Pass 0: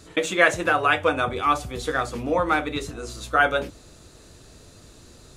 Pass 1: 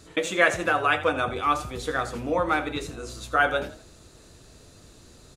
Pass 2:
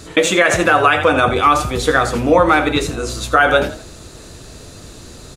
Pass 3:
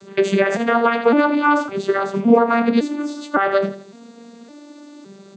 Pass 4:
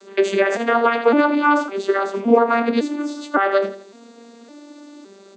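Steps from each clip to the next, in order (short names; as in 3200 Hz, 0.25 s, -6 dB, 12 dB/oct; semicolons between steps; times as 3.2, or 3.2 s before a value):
frequency-shifting echo 83 ms, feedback 37%, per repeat +31 Hz, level -15 dB; gain -2.5 dB
maximiser +15 dB; gain -1 dB
arpeggiated vocoder minor triad, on G3, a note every 0.56 s; gain -2 dB
steep high-pass 240 Hz 36 dB/oct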